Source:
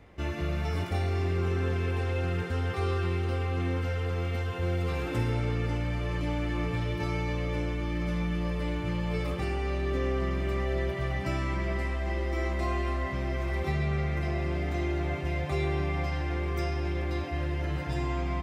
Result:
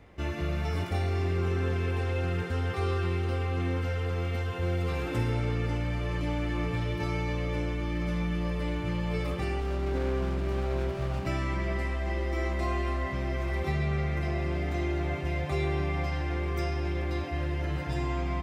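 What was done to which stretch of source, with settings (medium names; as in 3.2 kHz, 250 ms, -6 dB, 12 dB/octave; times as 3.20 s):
9.60–11.27 s: sliding maximum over 17 samples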